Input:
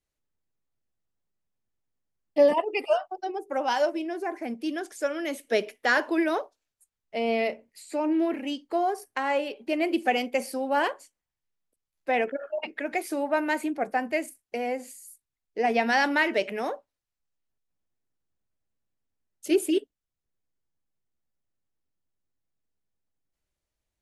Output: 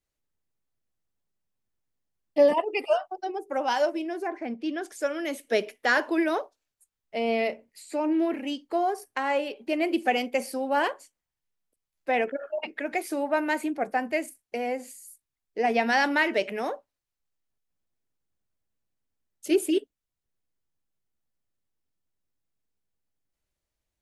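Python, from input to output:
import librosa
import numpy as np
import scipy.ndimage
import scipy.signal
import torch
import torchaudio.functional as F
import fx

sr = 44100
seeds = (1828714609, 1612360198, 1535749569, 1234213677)

y = fx.lowpass(x, sr, hz=4200.0, slope=12, at=(4.27, 4.82))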